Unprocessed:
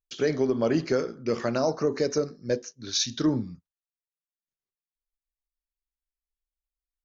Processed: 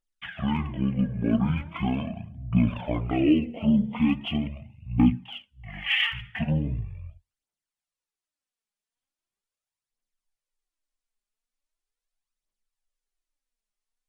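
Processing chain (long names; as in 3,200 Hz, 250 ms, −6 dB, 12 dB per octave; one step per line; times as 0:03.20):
wrong playback speed 15 ips tape played at 7.5 ips
phase shifter 0.4 Hz, delay 5 ms, feedback 56%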